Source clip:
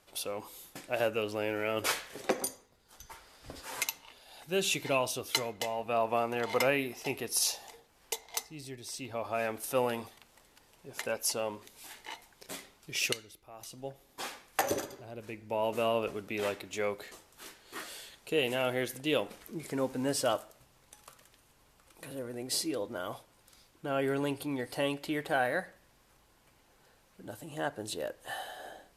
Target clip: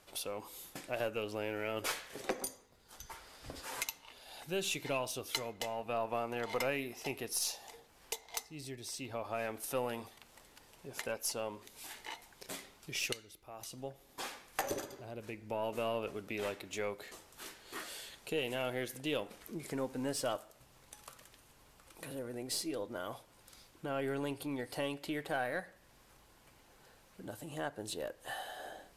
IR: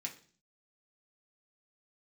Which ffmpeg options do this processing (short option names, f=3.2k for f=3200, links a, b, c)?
-af "aeval=exprs='0.211*(cos(1*acos(clip(val(0)/0.211,-1,1)))-cos(1*PI/2))+0.00422*(cos(8*acos(clip(val(0)/0.211,-1,1)))-cos(8*PI/2))':c=same,acompressor=threshold=-49dB:ratio=1.5,volume=2dB"